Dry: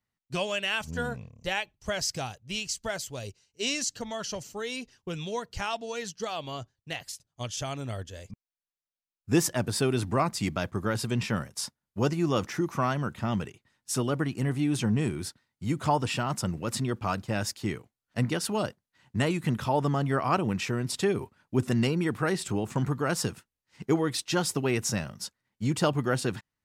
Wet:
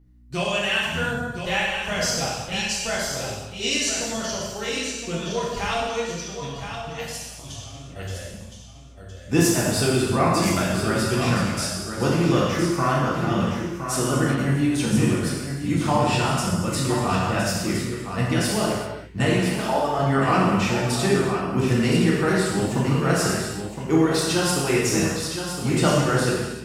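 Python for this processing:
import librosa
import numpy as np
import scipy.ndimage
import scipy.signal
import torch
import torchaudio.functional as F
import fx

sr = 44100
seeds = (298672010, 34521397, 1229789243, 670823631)

p1 = fx.over_compress(x, sr, threshold_db=-42.0, ratio=-0.5, at=(6.0, 7.96))
p2 = fx.highpass(p1, sr, hz=360.0, slope=12, at=(19.38, 19.99))
p3 = fx.add_hum(p2, sr, base_hz=60, snr_db=25)
p4 = p3 + fx.echo_single(p3, sr, ms=1015, db=-8.0, dry=0)
y = fx.rev_gated(p4, sr, seeds[0], gate_ms=420, shape='falling', drr_db=-6.5)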